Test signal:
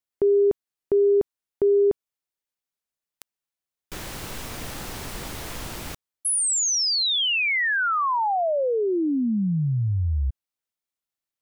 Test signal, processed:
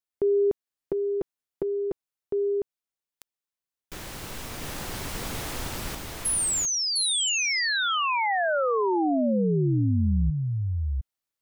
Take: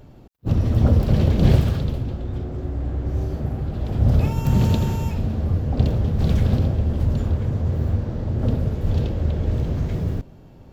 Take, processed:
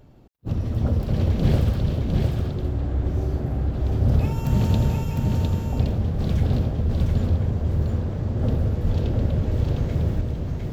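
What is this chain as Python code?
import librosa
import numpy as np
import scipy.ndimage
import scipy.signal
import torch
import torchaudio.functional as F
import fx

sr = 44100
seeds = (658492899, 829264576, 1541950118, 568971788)

y = fx.rider(x, sr, range_db=4, speed_s=2.0)
y = y + 10.0 ** (-3.0 / 20.0) * np.pad(y, (int(706 * sr / 1000.0), 0))[:len(y)]
y = F.gain(torch.from_numpy(y), -3.5).numpy()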